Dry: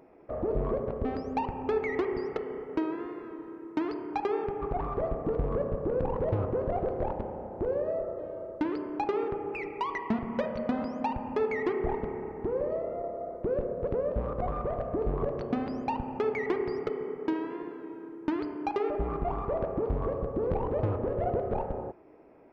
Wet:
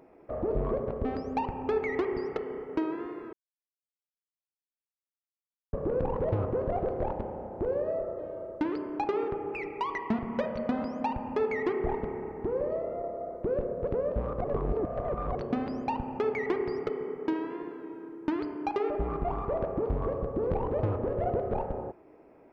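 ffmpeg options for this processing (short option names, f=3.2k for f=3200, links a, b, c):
-filter_complex "[0:a]asplit=5[a][b][c][d][e];[a]atrim=end=3.33,asetpts=PTS-STARTPTS,afade=t=out:st=3.326:d=0.004:c=hsin[f];[b]atrim=start=3.33:end=5.73,asetpts=PTS-STARTPTS,volume=0[g];[c]atrim=start=5.73:end=14.442,asetpts=PTS-STARTPTS,afade=t=in:d=0.004:c=hsin[h];[d]atrim=start=14.438:end=15.352,asetpts=PTS-STARTPTS,areverse[i];[e]atrim=start=15.348[j];[f][g][h]concat=n=3:v=0:a=1[k];[k][i]acrossfade=d=0.004:c1=hsin:c2=hsin[l];[l][j]acrossfade=d=0.004:c1=hsin:c2=hsin"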